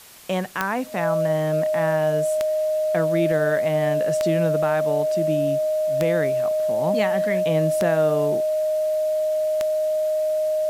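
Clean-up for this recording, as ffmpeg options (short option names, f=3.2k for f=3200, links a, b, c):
-af "adeclick=t=4,bandreject=f=620:w=30,afwtdn=0.0056"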